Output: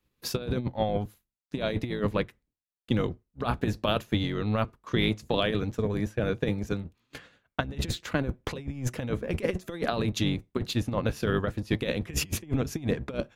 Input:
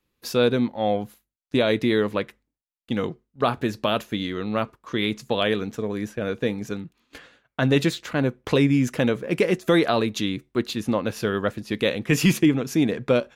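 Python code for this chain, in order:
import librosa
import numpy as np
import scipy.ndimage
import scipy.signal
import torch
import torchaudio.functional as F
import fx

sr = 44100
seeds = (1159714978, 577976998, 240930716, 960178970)

y = fx.octave_divider(x, sr, octaves=1, level_db=0.0)
y = fx.over_compress(y, sr, threshold_db=-22.0, ratio=-0.5)
y = fx.transient(y, sr, attack_db=3, sustain_db=-4)
y = y * librosa.db_to_amplitude(-5.5)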